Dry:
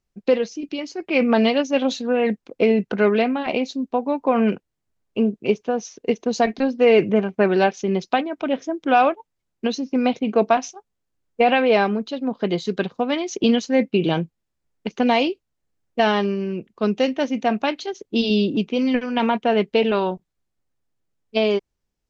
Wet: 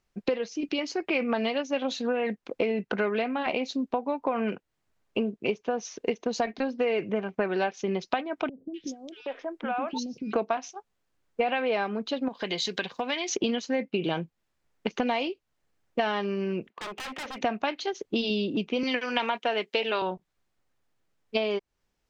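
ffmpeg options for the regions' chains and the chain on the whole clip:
ffmpeg -i in.wav -filter_complex "[0:a]asettb=1/sr,asplit=3[link_01][link_02][link_03];[link_01]atrim=end=8.494[link_04];[link_02]atrim=start=8.49:end=10.33,asetpts=PTS-STARTPTS,afade=type=in:duration=0.004:curve=qsin,afade=type=out:start_time=1.836:duration=0.004:curve=qsin,acompressor=threshold=-30dB:ratio=8:attack=3.2:release=140:knee=1:detection=peak,acrossover=split=360|3200[link_05][link_06][link_07];[link_07]adelay=250[link_08];[link_06]adelay=770[link_09];[link_05][link_09][link_08]amix=inputs=3:normalize=0,atrim=end_sample=81144[link_10];[link_03]atrim=start=10.326[link_11];[link_04][link_10]acrossfade=duration=0.004:curve1=hsin:curve2=qsin[link_12];[link_12][link_11]acrossfade=duration=0.004:curve1=qsin:curve2=hsin,asettb=1/sr,asplit=3[link_13][link_14][link_15];[link_13]atrim=end=12.284[link_16];[link_14]atrim=start=12.28:end=13.29,asetpts=PTS-STARTPTS,afade=type=in:duration=0.004:curve=qsin,afade=type=out:start_time=1.006:duration=0.004:curve=qsin,bandreject=frequency=1300:width=6,acompressor=threshold=-29dB:ratio=2:attack=3.2:release=140:knee=1:detection=peak,tiltshelf=frequency=1100:gain=-6.5[link_17];[link_15]atrim=start=13.286[link_18];[link_16][link_17]acrossfade=duration=0.004:curve1=hsin:curve2=qsin[link_19];[link_19][link_18]acrossfade=duration=0.004:curve1=qsin:curve2=hsin,asettb=1/sr,asplit=3[link_20][link_21][link_22];[link_20]atrim=end=16.694[link_23];[link_21]atrim=start=16.69:end=17.41,asetpts=PTS-STARTPTS,afade=type=in:duration=0.004:curve=qsin,afade=type=out:start_time=0.716:duration=0.004:curve=qsin,acompressor=threshold=-23dB:ratio=6:attack=3.2:release=140:knee=1:detection=peak,highpass=460,lowpass=3000,aeval=exprs='0.0141*(abs(mod(val(0)/0.0141+3,4)-2)-1)':channel_layout=same[link_24];[link_22]atrim=start=17.406[link_25];[link_23][link_24]acrossfade=duration=0.004:curve1=hsin:curve2=qsin[link_26];[link_26][link_25]acrossfade=duration=0.004:curve1=qsin:curve2=hsin,asettb=1/sr,asplit=3[link_27][link_28][link_29];[link_27]atrim=end=18.834[link_30];[link_28]atrim=start=18.83:end=20.02,asetpts=PTS-STARTPTS,afade=type=in:duration=0.004:curve=qsin,afade=type=out:start_time=1.186:duration=0.004:curve=qsin,highpass=300,highshelf=frequency=2600:gain=11[link_31];[link_29]atrim=start=20.016[link_32];[link_30][link_31]acrossfade=duration=0.004:curve1=hsin:curve2=qsin[link_33];[link_33][link_32]acrossfade=duration=0.004:curve1=qsin:curve2=hsin,equalizer=frequency=1500:width=0.3:gain=7.5,acompressor=threshold=-26dB:ratio=5" out.wav

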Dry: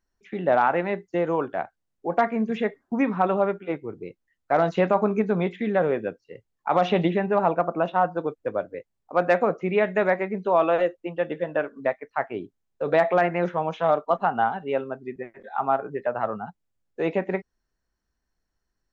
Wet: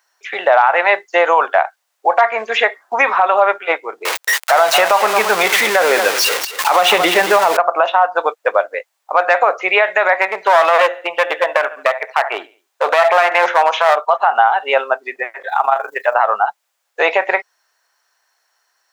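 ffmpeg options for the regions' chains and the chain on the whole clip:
ffmpeg -i in.wav -filter_complex "[0:a]asettb=1/sr,asplit=3[link_01][link_02][link_03];[link_01]atrim=end=4.054[link_04];[link_02]atrim=start=4.05:end=7.57,asetpts=PTS-STARTPTS,afade=type=in:duration=0.004:curve=qsin,afade=type=out:start_time=3.516:duration=0.004:curve=qsin,aeval=exprs='val(0)+0.5*0.0335*sgn(val(0))':channel_layout=same,asubboost=boost=11.5:cutoff=240,aecho=1:1:224:0.237,atrim=end_sample=155232[link_05];[link_03]atrim=start=7.566[link_06];[link_04][link_05]acrossfade=duration=0.004:curve1=hsin:curve2=qsin[link_07];[link_07][link_06]acrossfade=duration=0.004:curve1=qsin:curve2=hsin,asettb=1/sr,asplit=3[link_08][link_09][link_10];[link_08]atrim=end=10.214[link_11];[link_09]atrim=start=10.21:end=13.96,asetpts=PTS-STARTPTS,afade=type=in:duration=0.004:curve=qsin,afade=type=out:start_time=3.746:duration=0.004:curve=qsin,aecho=1:1:71|142|213:0.1|0.042|0.0176,atrim=end_sample=165375,aeval=exprs='clip(val(0),-1,0.0631)':channel_layout=same[link_12];[link_10]atrim=start=13.956[link_13];[link_11][link_12]acrossfade=duration=0.004:curve1=hsin:curve2=qsin[link_14];[link_14][link_13]acrossfade=duration=0.004:curve1=qsin:curve2=hsin,asettb=1/sr,asplit=3[link_15][link_16][link_17];[link_15]atrim=end=15.494[link_18];[link_16]atrim=start=15.49:end=16.14,asetpts=PTS-STARTPTS,afade=type=in:duration=0.004:curve=qsin,afade=type=out:start_time=0.646:duration=0.004:curve=qsin,tremolo=f=25:d=0.71,aemphasis=mode=production:type=75fm[link_19];[link_17]atrim=start=16.136[link_20];[link_18][link_19]acrossfade=duration=0.004:curve1=hsin:curve2=qsin[link_21];[link_21][link_20]acrossfade=duration=0.004:curve1=qsin:curve2=hsin,highpass=frequency=690:width=0.5412,highpass=frequency=690:width=1.3066,acompressor=threshold=-27dB:ratio=5,alimiter=level_in=23dB:limit=-1dB:release=50:level=0:latency=1,volume=-1dB" out.wav

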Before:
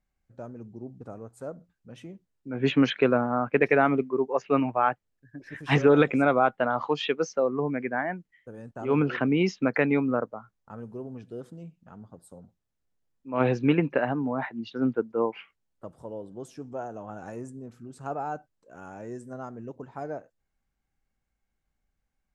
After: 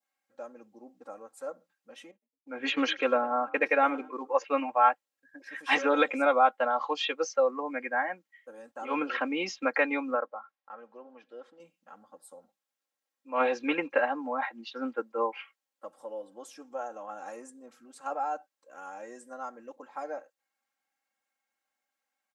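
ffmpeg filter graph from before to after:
ffmpeg -i in.wav -filter_complex "[0:a]asettb=1/sr,asplit=3[link_01][link_02][link_03];[link_01]atrim=end=2.114[link_04];[link_02]atrim=start=2.11:end=4.44,asetpts=PTS-STARTPTS,afade=type=in:duration=0.004:curve=qsin,afade=type=out:start_time=2.326:duration=0.004:curve=qsin,agate=range=-33dB:threshold=-38dB:ratio=3:release=100:detection=peak,equalizer=frequency=120:width_type=o:width=0.77:gain=3,asplit=3[link_05][link_06][link_07];[link_06]adelay=105,afreqshift=38,volume=-21.5dB[link_08];[link_07]adelay=210,afreqshift=76,volume=-31.7dB[link_09];[link_05][link_08][link_09]amix=inputs=3:normalize=0,atrim=end_sample=102753[link_10];[link_03]atrim=start=4.436[link_11];[link_04][link_10]acrossfade=duration=0.004:curve1=hsin:curve2=qsin[link_12];[link_12][link_11]acrossfade=duration=0.004:curve1=qsin:curve2=hsin,asettb=1/sr,asplit=3[link_13][link_14][link_15];[link_13]atrim=end=10.154[link_16];[link_14]atrim=start=10.15:end=11.6,asetpts=PTS-STARTPTS,afade=type=in:duration=0.004:curve=qsin,afade=type=out:start_time=1.446:duration=0.004:curve=qsin,lowpass=3200,equalizer=frequency=90:width_type=o:width=2.6:gain=-14[link_17];[link_15]atrim=start=11.596[link_18];[link_16][link_17]acrossfade=duration=0.004:curve1=hsin:curve2=qsin[link_19];[link_19][link_18]acrossfade=duration=0.004:curve1=qsin:curve2=hsin,highpass=620,aecho=1:1:3.7:0.93,adynamicequalizer=threshold=0.0126:dfrequency=1900:dqfactor=0.97:tfrequency=1900:tqfactor=0.97:attack=5:release=100:ratio=0.375:range=2.5:mode=cutabove:tftype=bell" out.wav

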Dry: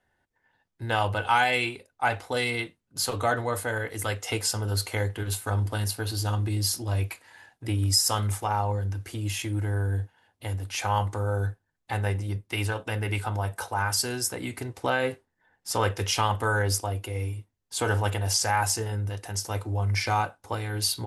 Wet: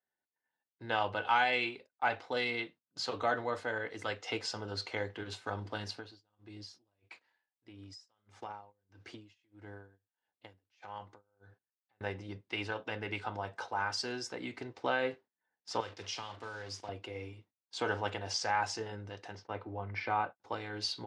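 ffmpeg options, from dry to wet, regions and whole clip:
ffmpeg -i in.wav -filter_complex "[0:a]asettb=1/sr,asplit=3[link_01][link_02][link_03];[link_01]atrim=end=5.974[link_04];[link_02]atrim=start=5.97:end=12.01,asetpts=PTS-STARTPTS,afade=type=in:duration=0.004:curve=qsin,afade=type=out:start_time=6.036:duration=0.004:curve=qsin,acompressor=threshold=-31dB:ratio=12:attack=3.2:release=140:knee=1:detection=peak,aeval=exprs='val(0)*pow(10,-20*(0.5-0.5*cos(2*PI*1.6*n/s))/20)':channel_layout=same[link_05];[link_03]atrim=start=12.006[link_06];[link_04][link_05]acrossfade=duration=0.004:curve1=hsin:curve2=qsin[link_07];[link_07][link_06]acrossfade=duration=0.004:curve1=qsin:curve2=hsin,asettb=1/sr,asplit=3[link_08][link_09][link_10];[link_08]atrim=end=15.804[link_11];[link_09]atrim=start=15.8:end=16.89,asetpts=PTS-STARTPTS,afade=type=in:duration=0.004:curve=qsin,afade=type=out:start_time=1.086:duration=0.004:curve=qsin,acrossover=split=83|4100[link_12][link_13][link_14];[link_12]acompressor=threshold=-38dB:ratio=4[link_15];[link_13]acompressor=threshold=-37dB:ratio=4[link_16];[link_14]acompressor=threshold=-30dB:ratio=4[link_17];[link_15][link_16][link_17]amix=inputs=3:normalize=0,acrusher=bits=6:mix=0:aa=0.5,asplit=2[link_18][link_19];[link_19]adelay=41,volume=-13dB[link_20];[link_18][link_20]amix=inputs=2:normalize=0,atrim=end_sample=48069[link_21];[link_10]atrim=start=16.886[link_22];[link_11][link_21]acrossfade=duration=0.004:curve1=hsin:curve2=qsin[link_23];[link_23][link_22]acrossfade=duration=0.004:curve1=qsin:curve2=hsin,asettb=1/sr,asplit=3[link_24][link_25][link_26];[link_24]atrim=end=19.354[link_27];[link_25]atrim=start=19.35:end=20.4,asetpts=PTS-STARTPTS,afade=type=in:duration=0.004:curve=qsin,afade=type=out:start_time=1.046:duration=0.004:curve=qsin,lowpass=2400,agate=range=-33dB:threshold=-40dB:ratio=3:release=100:detection=peak[link_28];[link_26]atrim=start=20.396[link_29];[link_27][link_28]acrossfade=duration=0.004:curve1=hsin:curve2=qsin[link_30];[link_30][link_29]acrossfade=duration=0.004:curve1=qsin:curve2=hsin,lowpass=frequency=5300:width=0.5412,lowpass=frequency=5300:width=1.3066,agate=range=-14dB:threshold=-48dB:ratio=16:detection=peak,highpass=200,volume=-6dB" out.wav

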